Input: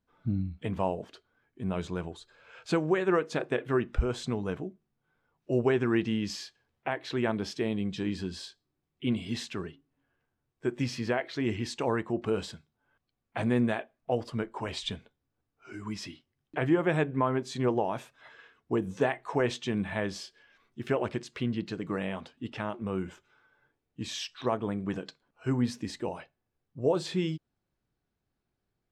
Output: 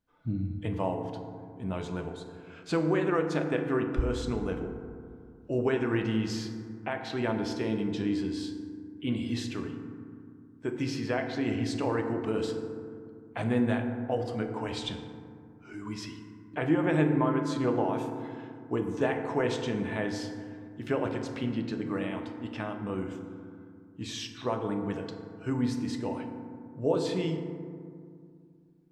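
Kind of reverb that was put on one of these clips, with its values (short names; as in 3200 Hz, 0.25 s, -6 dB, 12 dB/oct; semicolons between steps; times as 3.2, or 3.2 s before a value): FDN reverb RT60 2.2 s, low-frequency decay 1.45×, high-frequency decay 0.35×, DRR 4 dB; gain -2 dB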